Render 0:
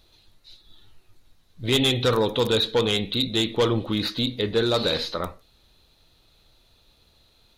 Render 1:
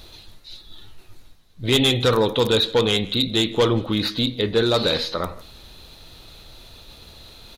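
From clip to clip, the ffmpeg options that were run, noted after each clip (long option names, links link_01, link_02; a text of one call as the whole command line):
ffmpeg -i in.wav -af "areverse,acompressor=mode=upward:threshold=-34dB:ratio=2.5,areverse,aecho=1:1:161:0.0794,volume=3dB" out.wav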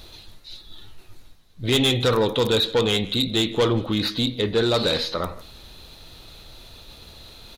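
ffmpeg -i in.wav -af "asoftclip=type=tanh:threshold=-12dB" out.wav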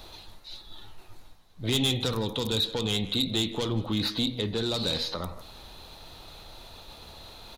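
ffmpeg -i in.wav -filter_complex "[0:a]equalizer=frequency=860:width_type=o:width=1.1:gain=8,bandreject=frequency=60:width_type=h:width=6,bandreject=frequency=120:width_type=h:width=6,acrossover=split=270|3000[link_01][link_02][link_03];[link_02]acompressor=threshold=-32dB:ratio=6[link_04];[link_01][link_04][link_03]amix=inputs=3:normalize=0,volume=-3dB" out.wav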